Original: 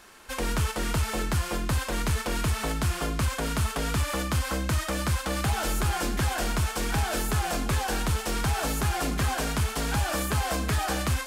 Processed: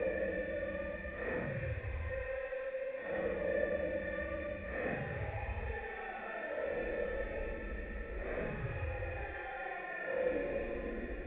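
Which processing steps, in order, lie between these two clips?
extreme stretch with random phases 9.4×, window 0.05 s, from 0:04.93
bit-depth reduction 6 bits, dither triangular
formant resonators in series e
level +3.5 dB

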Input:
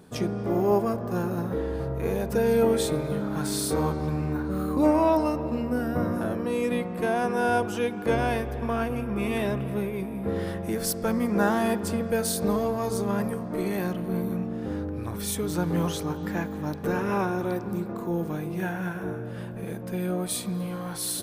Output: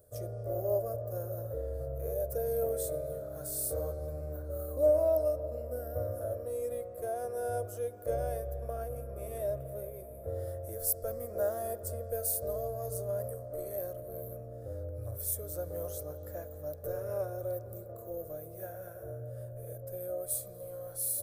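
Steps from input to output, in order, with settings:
drawn EQ curve 120 Hz 0 dB, 180 Hz −28 dB, 410 Hz −11 dB, 590 Hz +8 dB, 890 Hz −24 dB, 1,300 Hz −14 dB, 2,700 Hz −25 dB, 14,000 Hz +9 dB
level −4.5 dB

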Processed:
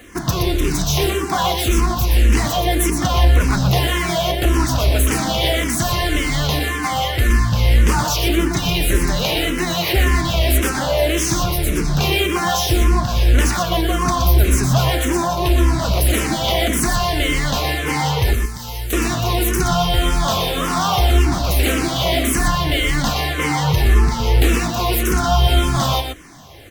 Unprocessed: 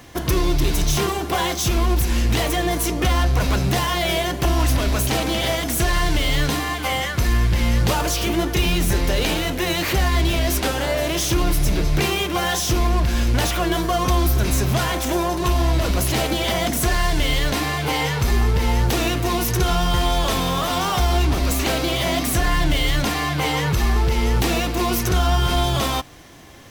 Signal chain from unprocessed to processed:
0:18.33–0:18.93: first-order pre-emphasis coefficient 0.8
single-tap delay 121 ms −5.5 dB
frequency shifter mixed with the dry sound −1.8 Hz
level +4.5 dB

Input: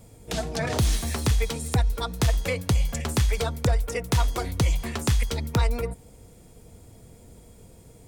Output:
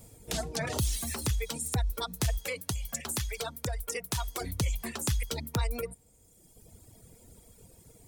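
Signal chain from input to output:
brickwall limiter −19 dBFS, peak gain reduction 3.5 dB
0:02.38–0:04.41: low-shelf EQ 490 Hz −5.5 dB
reverb reduction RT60 1.6 s
high-shelf EQ 5,800 Hz +9.5 dB
level −3.5 dB

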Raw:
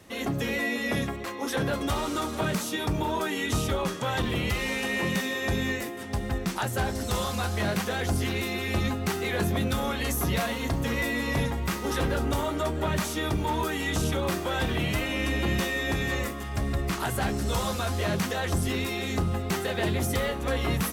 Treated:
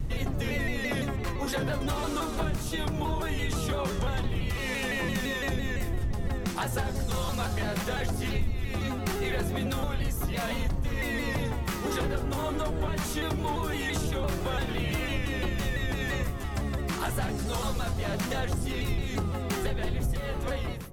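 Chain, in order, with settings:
fade-out on the ending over 0.55 s
wind on the microphone 81 Hz −26 dBFS
downward compressor 6 to 1, threshold −26 dBFS, peak gain reduction 17.5 dB
on a send: delay with a low-pass on its return 66 ms, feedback 69%, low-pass 710 Hz, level −11.5 dB
on the sum: pitch modulation by a square or saw wave saw down 5.9 Hz, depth 100 cents

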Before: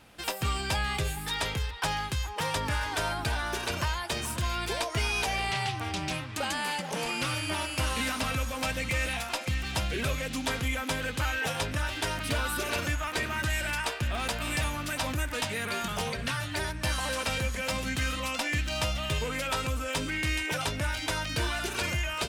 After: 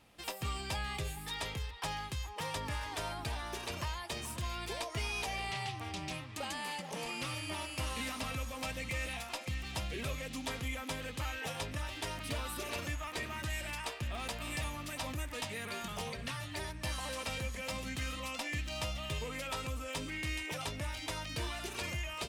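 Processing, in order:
notch filter 1,500 Hz, Q 7.2
level −8 dB

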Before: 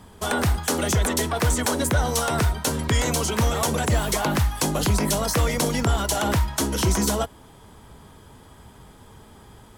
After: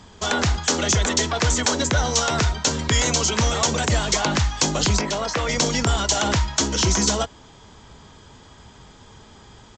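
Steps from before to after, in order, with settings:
0:05.01–0:05.49: bass and treble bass −8 dB, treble −12 dB
downsampling to 16,000 Hz
high-shelf EQ 2,500 Hz +9.5 dB

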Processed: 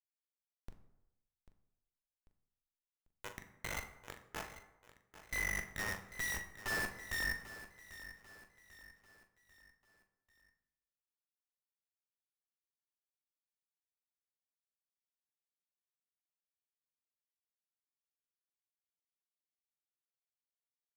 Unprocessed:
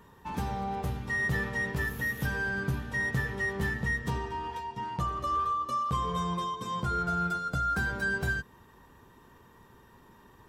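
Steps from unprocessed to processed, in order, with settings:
source passing by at 0:03.35, 36 m/s, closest 29 metres
high-pass filter 1,400 Hz 12 dB per octave
downward compressor 2.5 to 1, threshold −49 dBFS, peak gain reduction 12.5 dB
harmonic generator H 4 −11 dB, 7 −16 dB, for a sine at −36 dBFS
time stretch by overlap-add 2×, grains 41 ms
comparator with hysteresis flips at −45.5 dBFS
double-tracking delay 41 ms −11 dB
on a send: repeating echo 793 ms, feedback 44%, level −14.5 dB
on the sum: dense smooth reverb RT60 0.94 s, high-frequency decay 0.55×, DRR 7.5 dB
level +16 dB

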